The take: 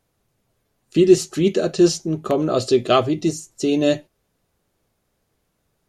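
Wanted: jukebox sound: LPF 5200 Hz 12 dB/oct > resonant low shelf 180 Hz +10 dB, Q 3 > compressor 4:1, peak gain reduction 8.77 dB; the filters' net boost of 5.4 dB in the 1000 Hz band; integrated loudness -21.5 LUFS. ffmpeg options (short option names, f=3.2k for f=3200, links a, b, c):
-af "lowpass=5.2k,lowshelf=f=180:t=q:w=3:g=10,equalizer=f=1k:t=o:g=8.5,acompressor=threshold=-16dB:ratio=4"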